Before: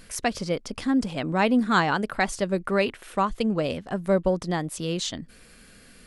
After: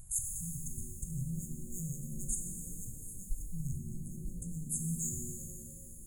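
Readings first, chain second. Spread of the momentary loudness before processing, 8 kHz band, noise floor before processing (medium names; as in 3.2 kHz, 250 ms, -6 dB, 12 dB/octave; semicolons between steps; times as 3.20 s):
8 LU, +2.0 dB, -52 dBFS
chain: hard clipper -23.5 dBFS, distortion -8 dB; brick-wall FIR band-stop 160–6400 Hz; pitch-shifted reverb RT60 2.6 s, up +7 st, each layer -8 dB, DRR 1.5 dB; trim +1 dB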